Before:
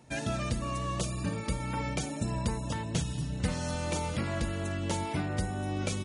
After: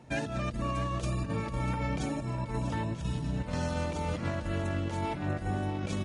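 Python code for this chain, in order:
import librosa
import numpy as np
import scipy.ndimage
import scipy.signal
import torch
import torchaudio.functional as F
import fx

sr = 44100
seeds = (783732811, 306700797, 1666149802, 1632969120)

p1 = fx.lowpass(x, sr, hz=2700.0, slope=6)
p2 = fx.over_compress(p1, sr, threshold_db=-34.0, ratio=-0.5)
p3 = p2 + fx.echo_feedback(p2, sr, ms=643, feedback_pct=41, wet_db=-12, dry=0)
y = p3 * librosa.db_to_amplitude(2.0)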